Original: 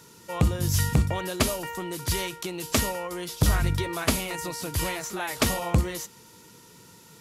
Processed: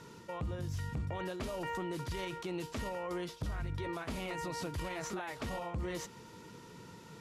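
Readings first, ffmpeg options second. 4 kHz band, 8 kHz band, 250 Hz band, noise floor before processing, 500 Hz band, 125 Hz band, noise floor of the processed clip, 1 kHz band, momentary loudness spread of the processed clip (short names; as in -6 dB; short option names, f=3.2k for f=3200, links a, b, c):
-15.5 dB, -19.0 dB, -10.5 dB, -52 dBFS, -8.5 dB, -13.5 dB, -53 dBFS, -9.0 dB, 13 LU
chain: -af "aemphasis=mode=reproduction:type=75fm,areverse,acompressor=threshold=-28dB:ratio=6,areverse,alimiter=level_in=7.5dB:limit=-24dB:level=0:latency=1:release=70,volume=-7.5dB,volume=1dB"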